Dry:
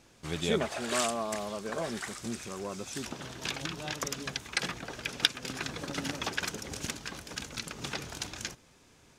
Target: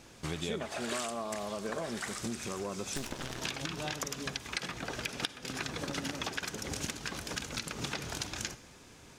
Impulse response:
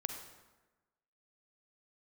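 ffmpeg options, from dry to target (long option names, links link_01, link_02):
-filter_complex "[0:a]asettb=1/sr,asplit=3[link_01][link_02][link_03];[link_01]atrim=end=2.964[link_04];[link_02]atrim=start=2.96:end=3.4,asetpts=PTS-STARTPTS,afade=type=in:duration=0.004:curve=qsin,afade=type=out:start_time=0.436:duration=0.004:curve=qsin,aeval=exprs='0.075*(cos(1*acos(clip(val(0)/0.075,-1,1)))-cos(1*PI/2))+0.015*(cos(8*acos(clip(val(0)/0.075,-1,1)))-cos(8*PI/2))':channel_layout=same[link_05];[link_03]atrim=start=3.396[link_06];[link_04][link_05]acrossfade=duration=0.004:curve1=hsin:curve2=qsin[link_07];[link_07][link_06]acrossfade=duration=0.004:curve1=qsin:curve2=hsin,acompressor=threshold=-39dB:ratio=6,asplit=2[link_08][link_09];[1:a]atrim=start_sample=2205[link_10];[link_09][link_10]afir=irnorm=-1:irlink=0,volume=-6.5dB[link_11];[link_08][link_11]amix=inputs=2:normalize=0,volume=2.5dB"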